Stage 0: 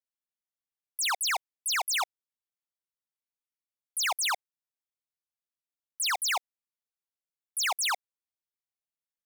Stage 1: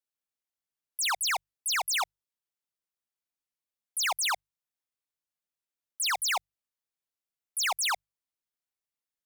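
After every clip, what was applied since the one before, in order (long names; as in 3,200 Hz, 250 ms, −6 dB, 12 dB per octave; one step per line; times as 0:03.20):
mains-hum notches 50/100/150 Hz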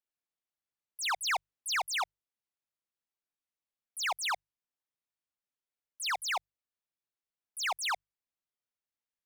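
speech leveller 0.5 s
high-shelf EQ 6,000 Hz −10.5 dB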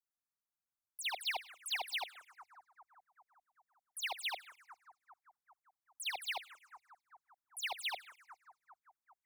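echo with a time of its own for lows and highs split 1,300 Hz, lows 395 ms, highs 105 ms, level −16 dB
phaser swept by the level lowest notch 480 Hz, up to 1,300 Hz, full sweep at −31 dBFS
level −2.5 dB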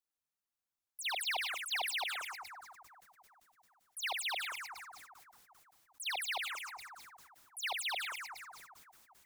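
level that may fall only so fast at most 25 dB per second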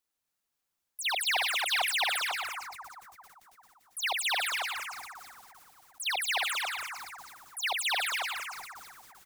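single-tap delay 276 ms −3.5 dB
level +6.5 dB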